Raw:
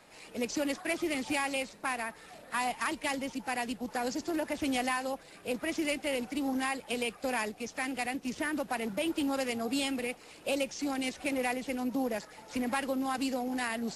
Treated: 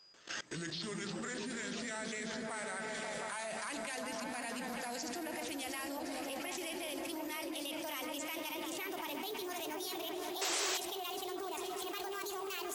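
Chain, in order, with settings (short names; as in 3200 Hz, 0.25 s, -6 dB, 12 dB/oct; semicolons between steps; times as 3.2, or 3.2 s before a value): speed glide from 65% -> 154%; gate with hold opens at -48 dBFS; in parallel at +2 dB: compressor, threshold -44 dBFS, peak gain reduction 15.5 dB; on the sum: tilt +2.5 dB/oct; repeats that get brighter 0.178 s, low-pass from 200 Hz, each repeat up 1 oct, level 0 dB; on a send at -12 dB: reverb RT60 0.45 s, pre-delay 3 ms; on the sum: whine 4900 Hz -59 dBFS; level quantiser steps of 21 dB; painted sound noise, 10.41–10.78, 320–8200 Hz -37 dBFS; gain +1 dB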